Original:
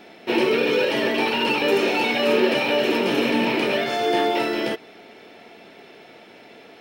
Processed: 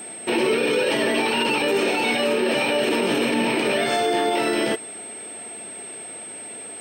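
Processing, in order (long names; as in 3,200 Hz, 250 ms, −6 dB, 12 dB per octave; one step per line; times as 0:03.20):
steady tone 8,300 Hz −38 dBFS
brickwall limiter −16 dBFS, peak gain reduction 9.5 dB
level +3.5 dB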